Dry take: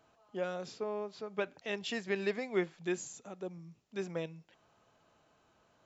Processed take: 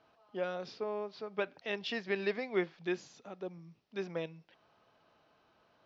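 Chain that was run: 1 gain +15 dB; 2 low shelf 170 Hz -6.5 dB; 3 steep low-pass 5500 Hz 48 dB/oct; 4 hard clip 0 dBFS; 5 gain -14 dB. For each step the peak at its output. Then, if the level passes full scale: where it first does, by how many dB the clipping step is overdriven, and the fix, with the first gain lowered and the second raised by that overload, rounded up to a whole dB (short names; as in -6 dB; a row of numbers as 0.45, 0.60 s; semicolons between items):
-3.5, -4.0, -4.0, -4.0, -18.0 dBFS; no overload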